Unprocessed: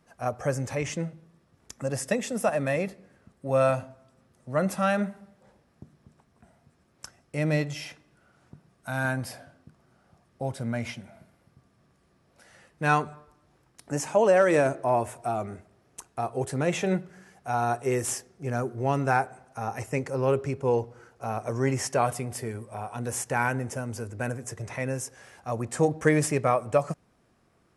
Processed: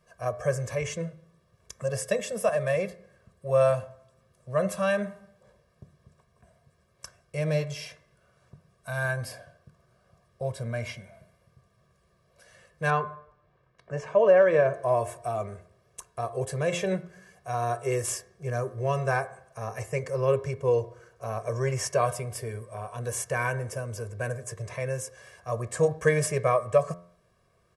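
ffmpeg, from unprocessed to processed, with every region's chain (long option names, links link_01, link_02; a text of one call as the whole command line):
ffmpeg -i in.wav -filter_complex "[0:a]asettb=1/sr,asplit=3[link_01][link_02][link_03];[link_01]atrim=end=12.904[link_04];[link_02]atrim=start=12.9:end=14.74,asetpts=PTS-STARTPTS,afade=type=in:duration=0.004:curve=qsin,afade=type=out:start_time=1.836:duration=0.004:curve=qsin,lowpass=2600,equalizer=frequency=62:width_type=o:width=0.83:gain=-7[link_05];[link_03]atrim=start=14.736[link_06];[link_04][link_05]acrossfade=duration=0.004:curve1=hsin:curve2=qsin[link_07];[link_07][link_06]acrossfade=duration=0.004:curve1=qsin:curve2=hsin,aecho=1:1:1.8:0.99,bandreject=frequency=87.21:width_type=h:width=4,bandreject=frequency=174.42:width_type=h:width=4,bandreject=frequency=261.63:width_type=h:width=4,bandreject=frequency=348.84:width_type=h:width=4,bandreject=frequency=436.05:width_type=h:width=4,bandreject=frequency=523.26:width_type=h:width=4,bandreject=frequency=610.47:width_type=h:width=4,bandreject=frequency=697.68:width_type=h:width=4,bandreject=frequency=784.89:width_type=h:width=4,bandreject=frequency=872.1:width_type=h:width=4,bandreject=frequency=959.31:width_type=h:width=4,bandreject=frequency=1046.52:width_type=h:width=4,bandreject=frequency=1133.73:width_type=h:width=4,bandreject=frequency=1220.94:width_type=h:width=4,bandreject=frequency=1308.15:width_type=h:width=4,bandreject=frequency=1395.36:width_type=h:width=4,bandreject=frequency=1482.57:width_type=h:width=4,bandreject=frequency=1569.78:width_type=h:width=4,bandreject=frequency=1656.99:width_type=h:width=4,bandreject=frequency=1744.2:width_type=h:width=4,bandreject=frequency=1831.41:width_type=h:width=4,bandreject=frequency=1918.62:width_type=h:width=4,bandreject=frequency=2005.83:width_type=h:width=4,bandreject=frequency=2093.04:width_type=h:width=4,bandreject=frequency=2180.25:width_type=h:width=4,bandreject=frequency=2267.46:width_type=h:width=4,volume=-3.5dB" out.wav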